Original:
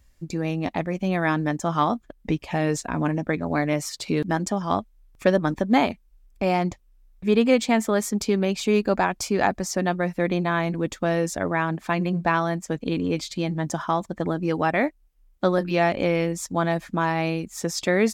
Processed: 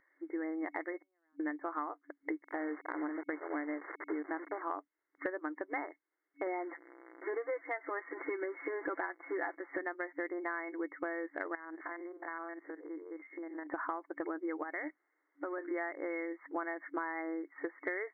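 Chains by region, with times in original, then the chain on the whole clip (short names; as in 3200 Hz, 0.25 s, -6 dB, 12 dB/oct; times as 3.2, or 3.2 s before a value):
0.98–1.4 LPF 1300 Hz 6 dB/oct + compressor 12:1, threshold -29 dBFS + flipped gate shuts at -35 dBFS, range -40 dB
2.43–4.62 level-crossing sampler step -27 dBFS + air absorption 450 m
6.46–9.79 zero-crossing step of -34 dBFS + comb 5.9 ms, depth 61%
11.55–13.67 stepped spectrum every 50 ms + brick-wall FIR high-pass 180 Hz + compressor 16:1, threshold -35 dBFS
14.63–15.66 G.711 law mismatch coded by mu + compressor 4:1, threshold -29 dBFS
whole clip: FFT band-pass 290–2200 Hz; bell 580 Hz -14 dB 2.2 oct; compressor 10:1, threshold -42 dBFS; gain +7.5 dB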